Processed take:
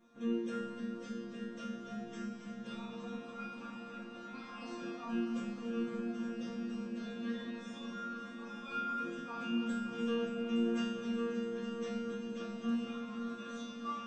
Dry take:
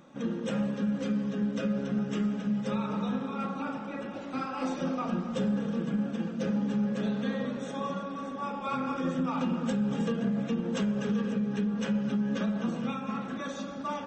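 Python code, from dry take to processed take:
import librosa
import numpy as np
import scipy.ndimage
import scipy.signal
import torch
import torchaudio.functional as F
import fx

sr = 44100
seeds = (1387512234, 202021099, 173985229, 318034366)

y = fx.low_shelf(x, sr, hz=89.0, db=6.5)
y = fx.resonator_bank(y, sr, root=58, chord='fifth', decay_s=0.7)
y = fx.echo_heads(y, sr, ms=289, heads='all three', feedback_pct=71, wet_db=-15)
y = F.gain(torch.from_numpy(y), 11.0).numpy()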